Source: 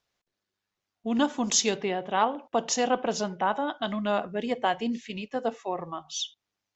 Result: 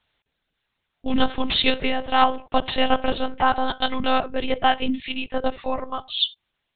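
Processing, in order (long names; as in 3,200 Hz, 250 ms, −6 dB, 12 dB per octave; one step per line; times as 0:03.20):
high-shelf EQ 2,600 Hz +11 dB
one-pitch LPC vocoder at 8 kHz 260 Hz
level +6 dB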